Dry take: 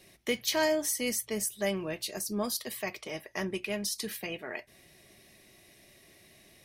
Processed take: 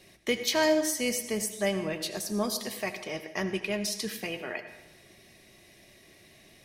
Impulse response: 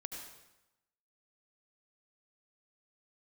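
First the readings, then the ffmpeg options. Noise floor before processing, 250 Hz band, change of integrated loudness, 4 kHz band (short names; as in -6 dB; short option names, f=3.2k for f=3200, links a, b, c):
-59 dBFS, +3.5 dB, +2.5 dB, +2.5 dB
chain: -filter_complex "[0:a]asplit=2[a][b];[1:a]atrim=start_sample=2205,lowpass=9k[c];[b][c]afir=irnorm=-1:irlink=0,volume=-0.5dB[d];[a][d]amix=inputs=2:normalize=0,volume=-1.5dB"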